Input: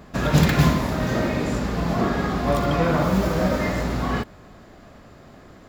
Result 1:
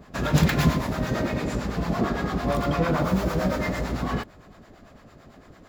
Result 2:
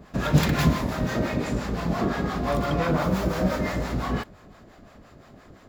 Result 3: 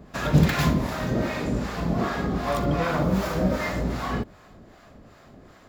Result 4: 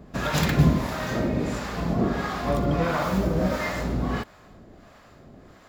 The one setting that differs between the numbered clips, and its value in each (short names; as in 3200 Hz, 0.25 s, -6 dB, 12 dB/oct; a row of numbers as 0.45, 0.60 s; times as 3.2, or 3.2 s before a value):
harmonic tremolo, rate: 8.9, 5.8, 2.6, 1.5 Hz